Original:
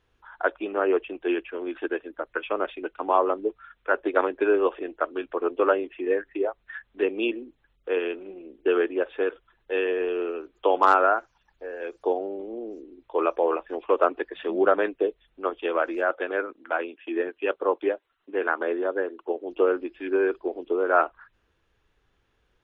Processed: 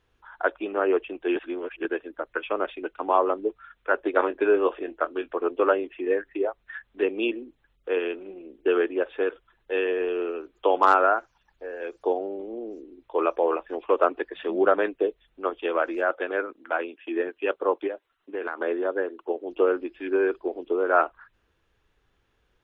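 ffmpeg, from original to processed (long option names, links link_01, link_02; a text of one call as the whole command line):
ffmpeg -i in.wav -filter_complex "[0:a]asettb=1/sr,asplit=3[link_01][link_02][link_03];[link_01]atrim=end=4.154[link_04];[link_02]atrim=start=4.15:end=5.38,asetpts=PTS-STARTPTS,afade=type=in:duration=0.004:curve=qsin,afade=type=out:start_time=1.226:duration=0.004:curve=qsin,asplit=2[link_05][link_06];[link_06]adelay=24,volume=-12dB[link_07];[link_05][link_07]amix=inputs=2:normalize=0,atrim=end_sample=54243[link_08];[link_03]atrim=start=5.376[link_09];[link_04][link_08]acrossfade=duration=0.004:curve1=hsin:curve2=qsin[link_10];[link_10][link_09]acrossfade=duration=0.004:curve1=qsin:curve2=hsin,asplit=3[link_11][link_12][link_13];[link_11]afade=type=out:start_time=17.86:duration=0.02[link_14];[link_12]acompressor=threshold=-26dB:ratio=6:attack=3.2:release=140:knee=1:detection=peak,afade=type=in:start_time=17.86:duration=0.02,afade=type=out:start_time=18.58:duration=0.02[link_15];[link_13]afade=type=in:start_time=18.58:duration=0.02[link_16];[link_14][link_15][link_16]amix=inputs=3:normalize=0,asplit=3[link_17][link_18][link_19];[link_17]atrim=end=1.362[link_20];[link_18]atrim=start=1.358:end=1.852,asetpts=PTS-STARTPTS,areverse[link_21];[link_19]atrim=start=1.848[link_22];[link_20][link_21]acrossfade=duration=0.004:curve1=hsin:curve2=hsin[link_23];[link_23][link_22]acrossfade=duration=0.004:curve1=hsin:curve2=hsin" out.wav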